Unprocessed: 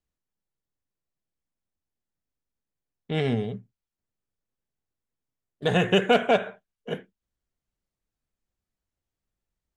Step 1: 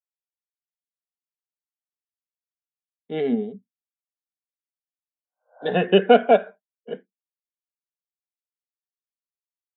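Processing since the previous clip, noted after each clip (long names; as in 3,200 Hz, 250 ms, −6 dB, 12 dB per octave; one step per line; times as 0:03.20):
healed spectral selection 0:05.10–0:05.66, 480–1,600 Hz both
Chebyshev band-pass filter 210–4,400 Hz, order 3
every bin expanded away from the loudest bin 1.5 to 1
level +5 dB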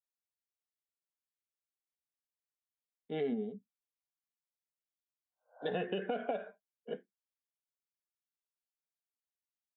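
brickwall limiter −13 dBFS, peak gain reduction 11.5 dB
downward compressor, threshold −24 dBFS, peak gain reduction 7 dB
double-tracking delay 14 ms −14 dB
level −7.5 dB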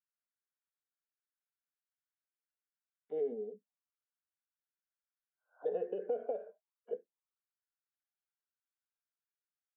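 envelope filter 480–1,500 Hz, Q 4.3, down, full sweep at −39.5 dBFS
level +3.5 dB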